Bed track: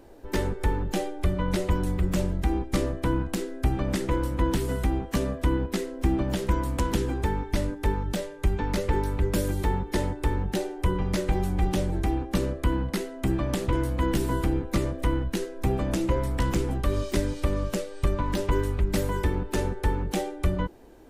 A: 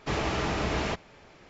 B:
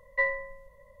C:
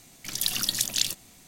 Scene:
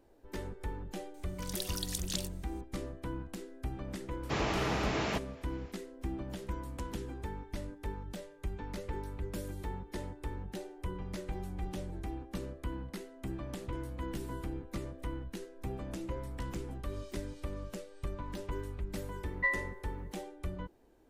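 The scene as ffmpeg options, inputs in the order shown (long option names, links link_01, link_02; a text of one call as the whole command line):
ffmpeg -i bed.wav -i cue0.wav -i cue1.wav -i cue2.wav -filter_complex "[0:a]volume=-14dB[link_01];[3:a]equalizer=frequency=8700:width=6.1:gain=4.5[link_02];[1:a]highpass=85[link_03];[2:a]highpass=frequency=710:width=0.5412,highpass=frequency=710:width=1.3066[link_04];[link_02]atrim=end=1.47,asetpts=PTS-STARTPTS,volume=-13dB,afade=type=in:duration=0.004:curve=hsin,afade=type=out:start_time=1.466:duration=0.004:curve=hsin,adelay=1140[link_05];[link_03]atrim=end=1.49,asetpts=PTS-STARTPTS,volume=-3.5dB,afade=type=in:duration=0.004:curve=hsin,afade=type=out:start_time=1.486:duration=0.004:curve=hsin,adelay=4230[link_06];[link_04]atrim=end=1,asetpts=PTS-STARTPTS,volume=-3.5dB,afade=type=in:duration=0.004:curve=hsin,afade=type=out:start_time=0.996:duration=0.004:curve=hsin,adelay=19250[link_07];[link_01][link_05][link_06][link_07]amix=inputs=4:normalize=0" out.wav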